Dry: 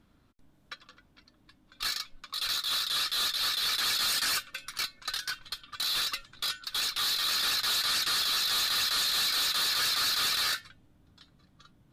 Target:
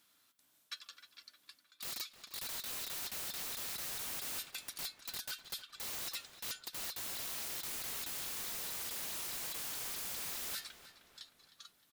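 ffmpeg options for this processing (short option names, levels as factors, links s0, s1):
-filter_complex "[0:a]aderivative,aeval=exprs='(mod(37.6*val(0)+1,2)-1)/37.6':c=same,areverse,acompressor=threshold=0.00282:ratio=6,areverse,asplit=2[s0][s1];[s1]adelay=309,lowpass=f=3800:p=1,volume=0.251,asplit=2[s2][s3];[s3]adelay=309,lowpass=f=3800:p=1,volume=0.53,asplit=2[s4][s5];[s5]adelay=309,lowpass=f=3800:p=1,volume=0.53,asplit=2[s6][s7];[s7]adelay=309,lowpass=f=3800:p=1,volume=0.53,asplit=2[s8][s9];[s9]adelay=309,lowpass=f=3800:p=1,volume=0.53,asplit=2[s10][s11];[s11]adelay=309,lowpass=f=3800:p=1,volume=0.53[s12];[s0][s2][s4][s6][s8][s10][s12]amix=inputs=7:normalize=0,volume=3.16"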